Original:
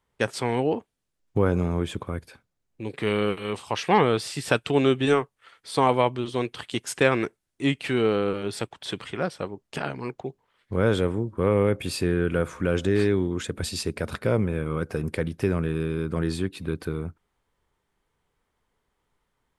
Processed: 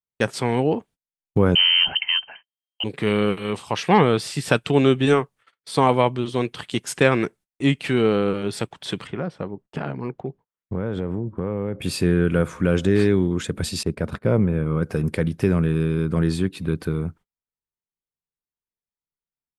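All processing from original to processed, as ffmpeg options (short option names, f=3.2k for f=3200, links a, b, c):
-filter_complex "[0:a]asettb=1/sr,asplit=3[a][b][c];[a]atrim=end=1.554[d];[b]atrim=start=1.55:end=2.84,asetpts=PTS-STARTPTS,afade=t=in:d=0.004:c=qsin,afade=t=out:st=1.286:d=0.004:c=qsin,volume=18.5dB,asoftclip=hard,volume=-18.5dB,acontrast=67,lowpass=f=2.7k:t=q:w=0.5098,lowpass=f=2.7k:t=q:w=0.6013,lowpass=f=2.7k:t=q:w=0.9,lowpass=f=2.7k:t=q:w=2.563,afreqshift=-3200[e];[c]atrim=start=2.836[f];[d][e]acrossfade=d=0.004:c1=hsin:c2=qsin[g];[g][f]acrossfade=d=0.004:c1=qsin:c2=hsin,asettb=1/sr,asplit=3[h][i][j];[h]atrim=end=9.074[k];[i]atrim=start=9.07:end=11.82,asetpts=PTS-STARTPTS,afade=t=in:d=0.004:c=qsin,afade=t=out:st=2.746:d=0.004:c=qsin,lowpass=f=1.3k:p=1,acompressor=threshold=-25dB:ratio=6:attack=3.2:release=140:knee=1:detection=peak[l];[j]atrim=start=11.816[m];[k][l]acrossfade=d=0.004:c1=hsin:c2=qsin[n];[n][m]acrossfade=d=0.004:c1=qsin:c2=hsin,asettb=1/sr,asplit=3[o][p][q];[o]atrim=end=13.834[r];[p]atrim=start=13.83:end=14.83,asetpts=PTS-STARTPTS,afade=t=in:d=0.004:c=qsin,afade=t=out:st=0.996:d=0.004:c=qsin,agate=range=-13dB:threshold=-39dB:ratio=16:release=100:detection=peak,highshelf=f=2.5k:g=-10[s];[q]atrim=start=14.826[t];[r][s]acrossfade=d=0.004:c1=hsin:c2=qsin[u];[u][t]acrossfade=d=0.004:c1=qsin:c2=hsin,agate=range=-31dB:threshold=-48dB:ratio=16:detection=peak,equalizer=f=170:w=1.5:g=5.5,volume=2.5dB"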